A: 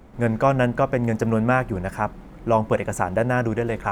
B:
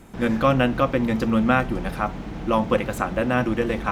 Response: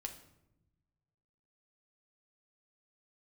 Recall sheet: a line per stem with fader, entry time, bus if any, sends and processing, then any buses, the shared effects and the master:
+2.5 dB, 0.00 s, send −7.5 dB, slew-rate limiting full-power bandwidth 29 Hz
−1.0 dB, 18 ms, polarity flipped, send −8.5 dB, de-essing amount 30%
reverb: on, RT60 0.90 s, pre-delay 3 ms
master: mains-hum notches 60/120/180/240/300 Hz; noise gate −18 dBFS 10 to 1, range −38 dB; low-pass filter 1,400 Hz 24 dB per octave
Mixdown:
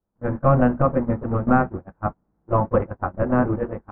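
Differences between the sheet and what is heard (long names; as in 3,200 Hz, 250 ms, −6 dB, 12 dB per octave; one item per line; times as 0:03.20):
stem A: send off
stem B: polarity flipped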